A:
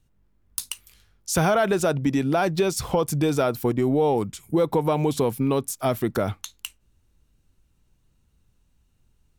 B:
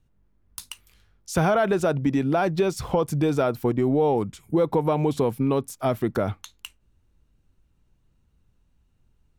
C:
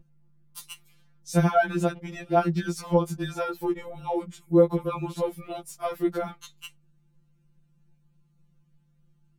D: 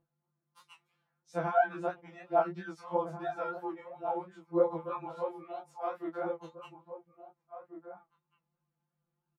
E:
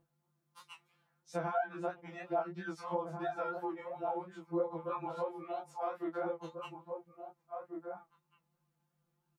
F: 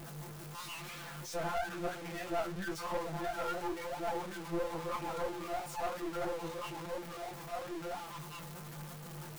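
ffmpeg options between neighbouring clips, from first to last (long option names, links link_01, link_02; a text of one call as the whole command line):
ffmpeg -i in.wav -af "highshelf=frequency=3700:gain=-9.5" out.wav
ffmpeg -i in.wav -af "aeval=exprs='val(0)+0.01*(sin(2*PI*50*n/s)+sin(2*PI*2*50*n/s)/2+sin(2*PI*3*50*n/s)/3+sin(2*PI*4*50*n/s)/4+sin(2*PI*5*50*n/s)/5)':channel_layout=same,afftfilt=real='re*2.83*eq(mod(b,8),0)':imag='im*2.83*eq(mod(b,8),0)':win_size=2048:overlap=0.75,volume=-1dB" out.wav
ffmpeg -i in.wav -filter_complex "[0:a]bandpass=frequency=880:width_type=q:width=1.2:csg=0,flanger=delay=20:depth=6:speed=3,asplit=2[link_01][link_02];[link_02]adelay=1691,volume=-9dB,highshelf=frequency=4000:gain=-38[link_03];[link_01][link_03]amix=inputs=2:normalize=0" out.wav
ffmpeg -i in.wav -af "acompressor=threshold=-40dB:ratio=2.5,volume=4dB" out.wav
ffmpeg -i in.wav -af "aeval=exprs='val(0)+0.5*0.0133*sgn(val(0))':channel_layout=same,flanger=delay=3:depth=9.4:regen=65:speed=1:shape=triangular,aeval=exprs='(tanh(56.2*val(0)+0.65)-tanh(0.65))/56.2':channel_layout=same,volume=5.5dB" out.wav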